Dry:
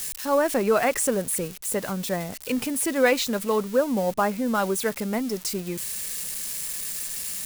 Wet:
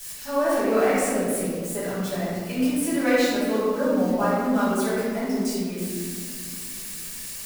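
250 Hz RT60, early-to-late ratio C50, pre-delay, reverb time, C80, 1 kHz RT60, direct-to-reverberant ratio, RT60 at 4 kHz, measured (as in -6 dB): 3.1 s, -3.0 dB, 3 ms, 1.9 s, 0.0 dB, 1.6 s, -11.0 dB, 1.0 s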